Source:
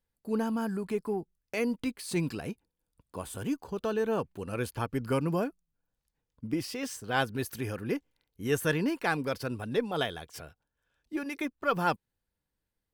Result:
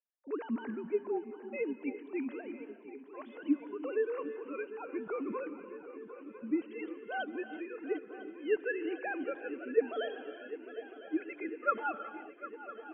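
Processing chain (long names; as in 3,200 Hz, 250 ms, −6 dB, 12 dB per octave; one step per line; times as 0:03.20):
three sine waves on the formant tracks
feedback echo with a long and a short gap by turns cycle 1,003 ms, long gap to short 3 to 1, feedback 68%, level −15 dB
reverb whose tail is shaped and stops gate 400 ms rising, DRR 11.5 dB
level −5 dB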